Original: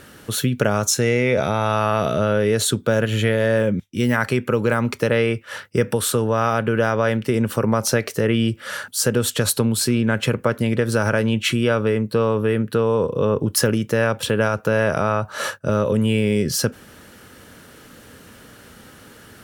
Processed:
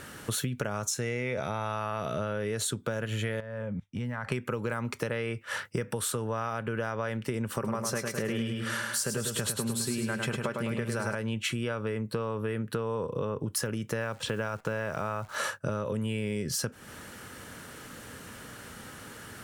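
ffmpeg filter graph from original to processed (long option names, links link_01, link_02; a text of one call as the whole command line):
ffmpeg -i in.wav -filter_complex "[0:a]asettb=1/sr,asplit=3[link_01][link_02][link_03];[link_01]atrim=end=3.404[link_04];[link_02]atrim=start=3.4:end=4.32,asetpts=PTS-STARTPTS,afade=type=in:duration=0.004:curve=qsin,afade=type=out:start_time=0.916:duration=0.004:curve=qsin,lowpass=frequency=1100:poles=1,equalizer=frequency=340:width_type=o:width=0.49:gain=-14.5,acompressor=threshold=-27dB:ratio=10:attack=3.2:release=140:knee=1:detection=peak[link_05];[link_03]atrim=start=4.316[link_06];[link_04][link_05]acrossfade=duration=0.004:curve1=hsin:curve2=qsin[link_07];[link_07][link_06]acrossfade=duration=0.004:curve1=qsin:curve2=hsin,asettb=1/sr,asplit=3[link_08][link_09][link_10];[link_08]atrim=end=7.544[link_11];[link_09]atrim=start=7.54:end=11.15,asetpts=PTS-STARTPTS,afade=type=in:duration=0.004:curve=qsin,afade=type=out:start_time=3.606:duration=0.004:curve=qsin,aecho=1:1:5.1:0.31,atrim=end_sample=159201,aecho=1:1:104|208|312|416|520|624:0.562|0.27|0.13|0.0622|0.0299|0.0143,atrim=end_sample=159201[link_12];[link_10]atrim=start=11.146[link_13];[link_11][link_12]acrossfade=duration=0.004:curve1=hsin:curve2=qsin[link_14];[link_14][link_13]acrossfade=duration=0.004:curve1=qsin:curve2=hsin,asettb=1/sr,asplit=3[link_15][link_16][link_17];[link_15]atrim=end=14.004[link_18];[link_16]atrim=start=14:end=15.36,asetpts=PTS-STARTPTS,afade=type=in:duration=0.004:curve=qsin,afade=type=out:start_time=1.356:duration=0.004:curve=qsin,lowpass=6800,acrusher=bits=8:dc=4:mix=0:aa=0.000001[link_19];[link_17]atrim=start=15.356[link_20];[link_18][link_19]acrossfade=duration=0.004:curve1=hsin:curve2=qsin[link_21];[link_21][link_20]acrossfade=duration=0.004:curve1=qsin:curve2=hsin,equalizer=frequency=125:width_type=o:width=1:gain=3,equalizer=frequency=1000:width_type=o:width=1:gain=4,equalizer=frequency=2000:width_type=o:width=1:gain=3,equalizer=frequency=8000:width_type=o:width=1:gain=5,acompressor=threshold=-26dB:ratio=6,volume=-3dB" out.wav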